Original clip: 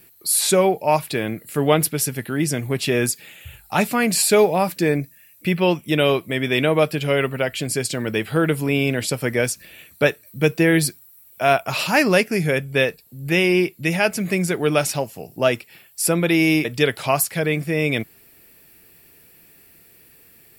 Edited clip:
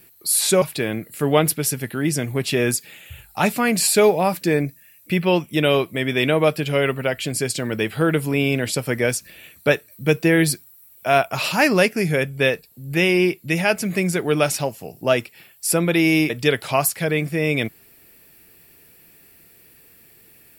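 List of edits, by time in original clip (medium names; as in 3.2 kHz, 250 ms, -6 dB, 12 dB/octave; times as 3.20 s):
0.62–0.97 s: delete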